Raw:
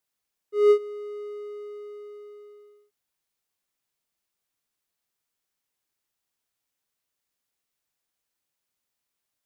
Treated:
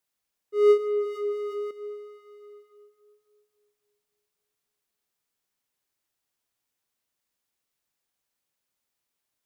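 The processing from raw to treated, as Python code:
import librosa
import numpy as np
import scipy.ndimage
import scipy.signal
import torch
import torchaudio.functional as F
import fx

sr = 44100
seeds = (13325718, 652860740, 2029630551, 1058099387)

y = fx.echo_tape(x, sr, ms=275, feedback_pct=56, wet_db=-5.0, lp_hz=1100.0, drive_db=10.0, wow_cents=12)
y = fx.env_flatten(y, sr, amount_pct=50, at=(0.76, 1.71))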